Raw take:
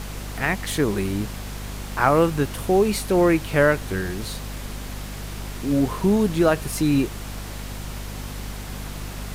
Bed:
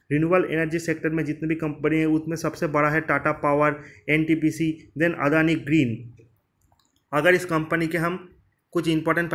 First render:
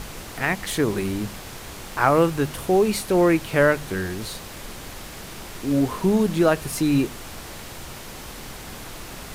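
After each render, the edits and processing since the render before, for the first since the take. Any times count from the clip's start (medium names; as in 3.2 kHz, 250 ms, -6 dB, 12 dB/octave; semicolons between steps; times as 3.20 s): de-hum 50 Hz, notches 5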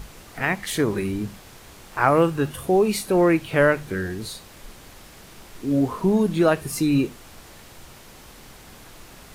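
noise print and reduce 8 dB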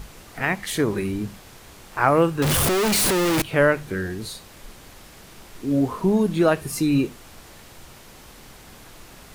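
2.42–3.42 s: one-bit comparator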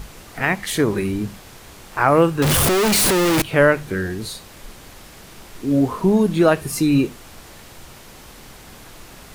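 trim +3.5 dB; peak limiter -3 dBFS, peak gain reduction 2.5 dB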